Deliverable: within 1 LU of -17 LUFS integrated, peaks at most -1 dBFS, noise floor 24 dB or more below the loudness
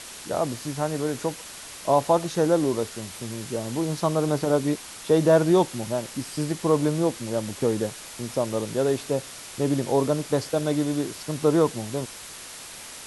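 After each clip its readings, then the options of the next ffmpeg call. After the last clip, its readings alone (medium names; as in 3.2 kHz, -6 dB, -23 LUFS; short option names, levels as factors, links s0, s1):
noise floor -41 dBFS; noise floor target -49 dBFS; loudness -25.0 LUFS; peak level -8.0 dBFS; loudness target -17.0 LUFS
-> -af "afftdn=nr=8:nf=-41"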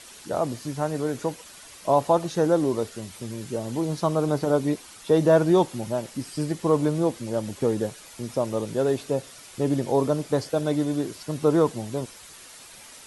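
noise floor -46 dBFS; noise floor target -49 dBFS
-> -af "afftdn=nr=6:nf=-46"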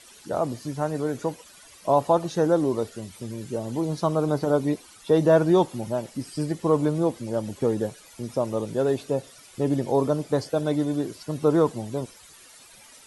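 noise floor -50 dBFS; loudness -25.0 LUFS; peak level -8.0 dBFS; loudness target -17.0 LUFS
-> -af "volume=2.51,alimiter=limit=0.891:level=0:latency=1"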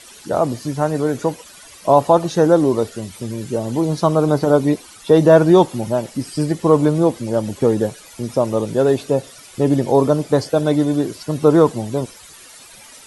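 loudness -17.5 LUFS; peak level -1.0 dBFS; noise floor -42 dBFS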